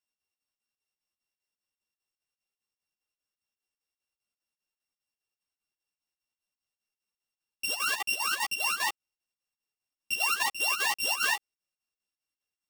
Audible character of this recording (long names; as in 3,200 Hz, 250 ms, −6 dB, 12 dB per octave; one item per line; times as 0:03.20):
a buzz of ramps at a fixed pitch in blocks of 16 samples
chopped level 5 Hz, depth 65%, duty 70%
a shimmering, thickened sound